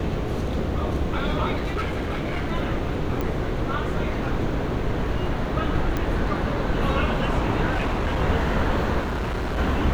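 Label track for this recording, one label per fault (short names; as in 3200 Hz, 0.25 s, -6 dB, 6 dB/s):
1.560000	2.520000	clipped -22 dBFS
3.210000	3.210000	pop -15 dBFS
5.970000	5.970000	pop -12 dBFS
7.700000	8.220000	clipped -19.5 dBFS
9.000000	9.590000	clipped -23.5 dBFS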